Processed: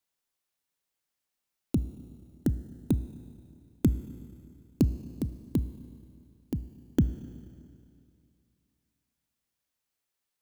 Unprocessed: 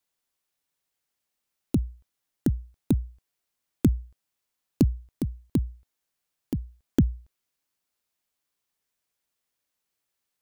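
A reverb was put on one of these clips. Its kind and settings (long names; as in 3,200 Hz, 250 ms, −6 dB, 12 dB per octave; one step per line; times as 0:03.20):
four-comb reverb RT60 2.5 s, combs from 25 ms, DRR 13 dB
level −3 dB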